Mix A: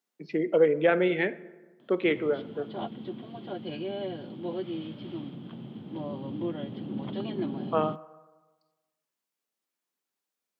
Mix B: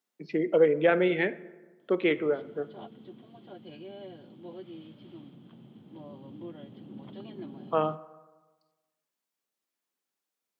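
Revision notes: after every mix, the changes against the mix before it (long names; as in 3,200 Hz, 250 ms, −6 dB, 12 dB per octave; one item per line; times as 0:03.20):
background −10.0 dB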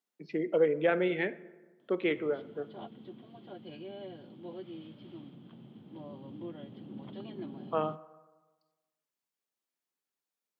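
speech −4.5 dB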